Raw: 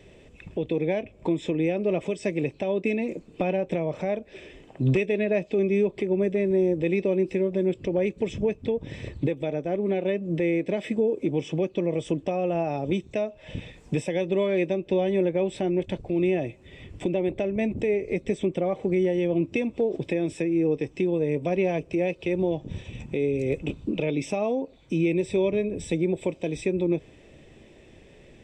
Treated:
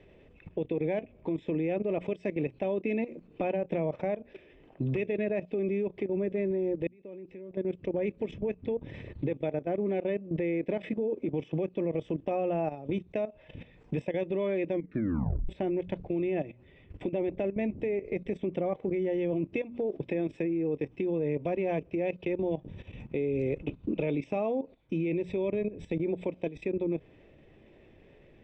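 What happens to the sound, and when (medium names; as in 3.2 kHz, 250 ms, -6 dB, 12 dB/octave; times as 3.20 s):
6.87–8.06 s: fade in
14.70 s: tape stop 0.79 s
whole clip: low-pass 2.6 kHz 12 dB/octave; hum notches 60/120/180/240 Hz; level held to a coarse grid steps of 14 dB; trim -1 dB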